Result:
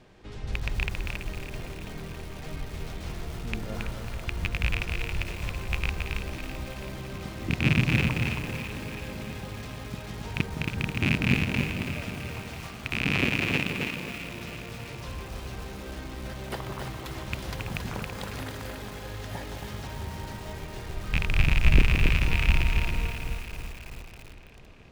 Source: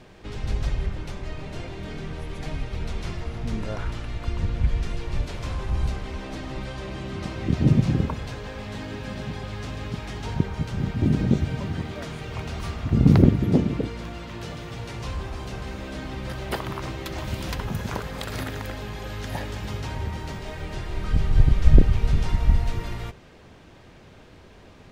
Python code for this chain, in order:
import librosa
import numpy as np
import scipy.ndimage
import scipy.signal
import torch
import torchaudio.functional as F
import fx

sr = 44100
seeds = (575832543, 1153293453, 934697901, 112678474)

y = fx.rattle_buzz(x, sr, strikes_db=-20.0, level_db=-7.0)
y = fx.low_shelf(y, sr, hz=300.0, db=-11.5, at=(12.39, 14.18))
y = fx.echo_alternate(y, sr, ms=165, hz=1100.0, feedback_pct=81, wet_db=-8)
y = fx.echo_crushed(y, sr, ms=274, feedback_pct=35, bits=6, wet_db=-4.0)
y = y * librosa.db_to_amplitude(-6.5)